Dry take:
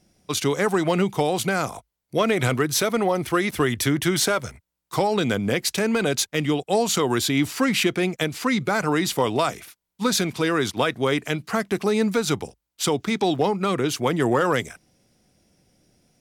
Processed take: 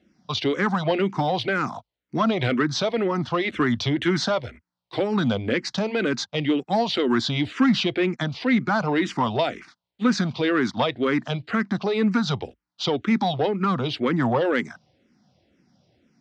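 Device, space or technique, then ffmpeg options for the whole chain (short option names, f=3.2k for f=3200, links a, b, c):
barber-pole phaser into a guitar amplifier: -filter_complex "[0:a]asplit=2[a][b];[b]afreqshift=-2[c];[a][c]amix=inputs=2:normalize=1,asoftclip=type=tanh:threshold=-16dB,highpass=96,equalizer=f=240:t=q:w=4:g=4,equalizer=f=440:t=q:w=4:g=-4,equalizer=f=2.4k:t=q:w=4:g=-3,lowpass=f=4.5k:w=0.5412,lowpass=f=4.5k:w=1.3066,volume=4dB"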